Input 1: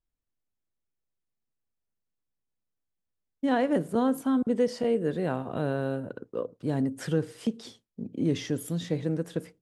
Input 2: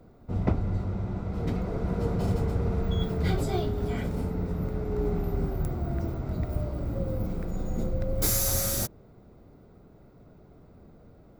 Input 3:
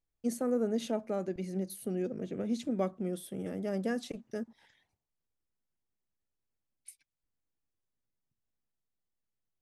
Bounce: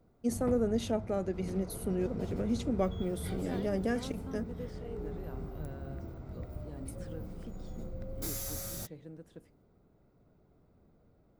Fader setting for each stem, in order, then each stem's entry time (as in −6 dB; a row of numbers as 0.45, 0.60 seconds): −19.5, −12.5, +1.0 decibels; 0.00, 0.00, 0.00 seconds